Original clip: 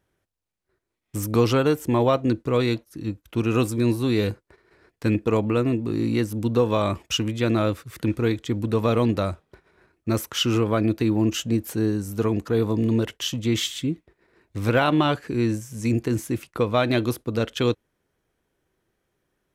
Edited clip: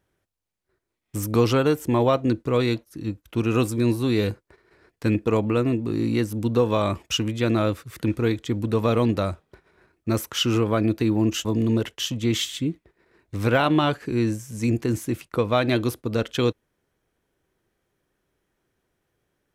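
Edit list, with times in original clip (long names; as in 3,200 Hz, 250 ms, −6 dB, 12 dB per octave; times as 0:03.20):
0:11.45–0:12.67: remove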